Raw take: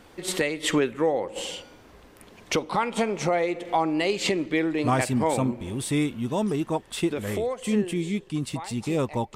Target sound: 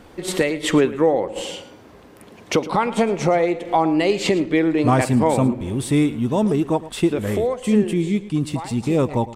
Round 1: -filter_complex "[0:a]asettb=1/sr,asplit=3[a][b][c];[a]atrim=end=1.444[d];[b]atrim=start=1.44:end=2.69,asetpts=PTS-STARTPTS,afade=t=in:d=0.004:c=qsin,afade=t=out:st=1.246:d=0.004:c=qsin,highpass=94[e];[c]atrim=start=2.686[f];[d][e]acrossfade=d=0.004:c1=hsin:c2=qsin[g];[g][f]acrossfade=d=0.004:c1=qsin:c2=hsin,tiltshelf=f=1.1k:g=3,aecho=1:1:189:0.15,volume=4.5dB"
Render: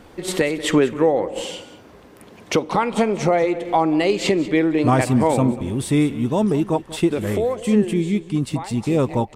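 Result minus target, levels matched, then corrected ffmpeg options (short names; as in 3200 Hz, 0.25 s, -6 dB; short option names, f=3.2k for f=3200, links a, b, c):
echo 78 ms late
-filter_complex "[0:a]asettb=1/sr,asplit=3[a][b][c];[a]atrim=end=1.444[d];[b]atrim=start=1.44:end=2.69,asetpts=PTS-STARTPTS,afade=t=in:d=0.004:c=qsin,afade=t=out:st=1.246:d=0.004:c=qsin,highpass=94[e];[c]atrim=start=2.686[f];[d][e]acrossfade=d=0.004:c1=hsin:c2=qsin[g];[g][f]acrossfade=d=0.004:c1=qsin:c2=hsin,tiltshelf=f=1.1k:g=3,aecho=1:1:111:0.15,volume=4.5dB"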